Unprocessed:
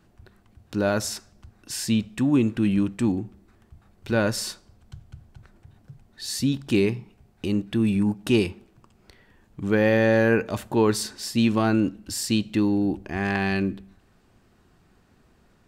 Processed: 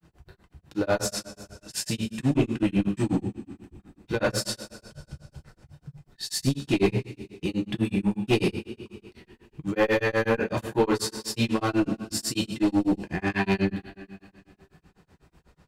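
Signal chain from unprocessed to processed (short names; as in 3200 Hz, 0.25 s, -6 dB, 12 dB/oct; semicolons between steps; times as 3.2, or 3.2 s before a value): two-slope reverb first 0.45 s, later 2.5 s, from -18 dB, DRR -2 dB; grains 0.125 s, grains 8.1/s, spray 26 ms, pitch spread up and down by 0 st; one-sided clip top -20 dBFS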